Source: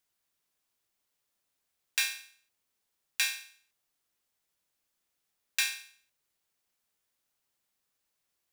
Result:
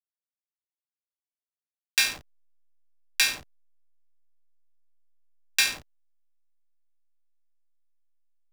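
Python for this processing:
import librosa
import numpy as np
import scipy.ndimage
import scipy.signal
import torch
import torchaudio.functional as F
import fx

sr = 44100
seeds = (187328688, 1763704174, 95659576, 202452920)

y = fx.dynamic_eq(x, sr, hz=4900.0, q=4.9, threshold_db=-49.0, ratio=4.0, max_db=5)
y = fx.backlash(y, sr, play_db=-33.5)
y = y * 10.0 ** (6.5 / 20.0)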